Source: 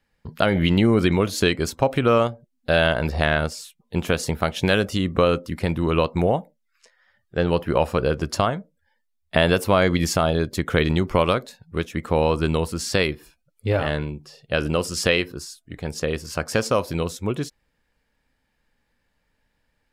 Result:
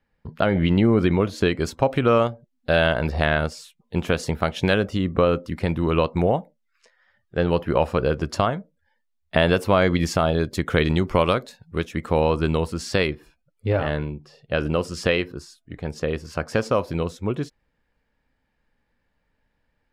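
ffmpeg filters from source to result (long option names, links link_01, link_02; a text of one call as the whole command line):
ffmpeg -i in.wav -af "asetnsamples=nb_out_samples=441:pad=0,asendcmd='1.56 lowpass f 4300;4.74 lowpass f 1900;5.4 lowpass f 4000;10.38 lowpass f 8100;12.2 lowpass f 3900;13.1 lowpass f 2300',lowpass=frequency=1800:poles=1" out.wav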